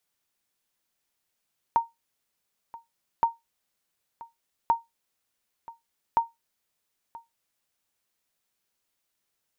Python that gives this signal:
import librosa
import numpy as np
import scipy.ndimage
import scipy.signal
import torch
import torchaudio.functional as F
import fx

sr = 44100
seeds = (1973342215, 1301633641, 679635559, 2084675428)

y = fx.sonar_ping(sr, hz=924.0, decay_s=0.18, every_s=1.47, pings=4, echo_s=0.98, echo_db=-20.5, level_db=-13.0)